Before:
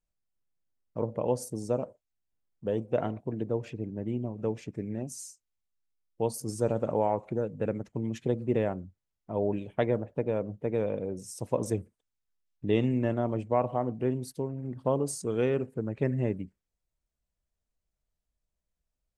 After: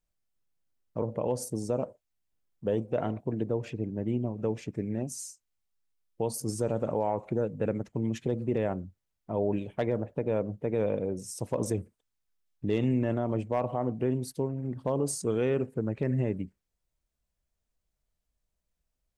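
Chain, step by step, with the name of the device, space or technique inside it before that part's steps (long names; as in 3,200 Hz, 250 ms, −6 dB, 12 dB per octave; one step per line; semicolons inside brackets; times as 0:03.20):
clipper into limiter (hard clipping −15 dBFS, distortion −32 dB; brickwall limiter −20.5 dBFS, peak gain reduction 5.5 dB)
level +2.5 dB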